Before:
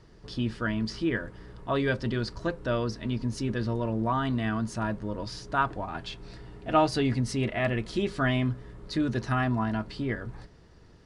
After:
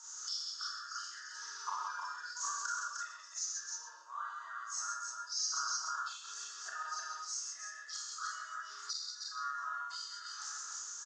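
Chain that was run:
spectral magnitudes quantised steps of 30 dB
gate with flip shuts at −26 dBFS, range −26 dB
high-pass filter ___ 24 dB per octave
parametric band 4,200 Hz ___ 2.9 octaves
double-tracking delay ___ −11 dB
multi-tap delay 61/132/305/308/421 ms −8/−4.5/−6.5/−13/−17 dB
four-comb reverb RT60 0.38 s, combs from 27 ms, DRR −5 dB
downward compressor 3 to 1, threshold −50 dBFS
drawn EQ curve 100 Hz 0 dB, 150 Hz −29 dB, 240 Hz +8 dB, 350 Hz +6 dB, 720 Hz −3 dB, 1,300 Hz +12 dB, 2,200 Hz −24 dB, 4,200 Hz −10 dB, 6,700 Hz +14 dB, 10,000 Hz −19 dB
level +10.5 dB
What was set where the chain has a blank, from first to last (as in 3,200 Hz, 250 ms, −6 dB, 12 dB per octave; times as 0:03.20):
1,500 Hz, +4 dB, 15 ms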